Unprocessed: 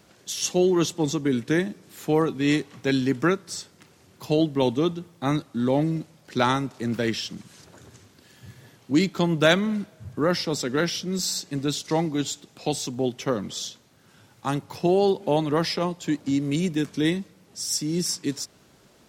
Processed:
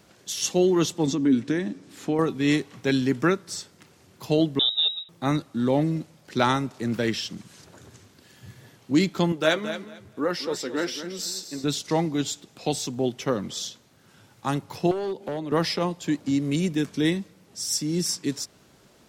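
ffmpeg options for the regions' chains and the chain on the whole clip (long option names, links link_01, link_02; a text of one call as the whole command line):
ffmpeg -i in.wav -filter_complex "[0:a]asettb=1/sr,asplit=3[link_01][link_02][link_03];[link_01]atrim=end=1.074[link_04];[link_02]atrim=start=1.07:end=2.19,asetpts=PTS-STARTPTS,afade=type=in:duration=0.004:curve=qsin,afade=type=out:start_time=1.116:duration=0.004:curve=qsin,lowpass=8200,acompressor=threshold=-25dB:ratio=2.5:attack=3.2:release=140:knee=1:detection=peak,equalizer=frequency=270:width_type=o:width=0.24:gain=14.5[link_05];[link_03]atrim=start=2.186[link_06];[link_04][link_05]acrossfade=duration=0.004:curve1=hsin:curve2=qsin[link_07];[link_07][link_06]acrossfade=duration=0.004:curve1=qsin:curve2=hsin,asettb=1/sr,asplit=3[link_08][link_09][link_10];[link_08]atrim=end=4.594[link_11];[link_09]atrim=start=4.59:end=5.09,asetpts=PTS-STARTPTS,afade=type=in:duration=0.004:curve=qsin,afade=type=out:start_time=0.496:duration=0.004:curve=qsin,equalizer=frequency=2000:width=0.66:gain=-10,lowpass=frequency=3400:width_type=q:width=0.5098,lowpass=frequency=3400:width_type=q:width=0.6013,lowpass=frequency=3400:width_type=q:width=0.9,lowpass=frequency=3400:width_type=q:width=2.563,afreqshift=-4000,asuperstop=centerf=990:order=4:qfactor=6.9[link_12];[link_10]atrim=start=5.086[link_13];[link_11][link_12]acrossfade=duration=0.004:curve1=hsin:curve2=qsin[link_14];[link_14][link_13]acrossfade=duration=0.004:curve1=qsin:curve2=hsin,asettb=1/sr,asplit=3[link_15][link_16][link_17];[link_15]atrim=end=9.324[link_18];[link_16]atrim=start=9.32:end=11.64,asetpts=PTS-STARTPTS,afade=type=in:duration=0.004:curve=qsin,afade=type=out:start_time=2.316:duration=0.004:curve=qsin,flanger=delay=3.3:depth=8.5:regen=44:speed=1.1:shape=triangular,lowshelf=frequency=260:width_type=q:width=1.5:gain=-6,aecho=1:1:223|446|669:0.282|0.0535|0.0102,atrim=end_sample=102312[link_19];[link_17]atrim=start=11.636[link_20];[link_18][link_19]acrossfade=duration=0.004:curve1=hsin:curve2=qsin[link_21];[link_21][link_20]acrossfade=duration=0.004:curve1=qsin:curve2=hsin,asettb=1/sr,asplit=3[link_22][link_23][link_24];[link_22]atrim=end=14.914[link_25];[link_23]atrim=start=14.91:end=15.52,asetpts=PTS-STARTPTS,afade=type=in:duration=0.004:curve=qsin,afade=type=out:start_time=0.606:duration=0.004:curve=qsin,acrossover=split=290|600[link_26][link_27][link_28];[link_26]acompressor=threshold=-40dB:ratio=4[link_29];[link_27]acompressor=threshold=-28dB:ratio=4[link_30];[link_28]acompressor=threshold=-40dB:ratio=4[link_31];[link_29][link_30][link_31]amix=inputs=3:normalize=0,asoftclip=type=hard:threshold=-25dB[link_32];[link_24]atrim=start=15.516[link_33];[link_25][link_32]acrossfade=duration=0.004:curve1=hsin:curve2=qsin[link_34];[link_34][link_33]acrossfade=duration=0.004:curve1=qsin:curve2=hsin" out.wav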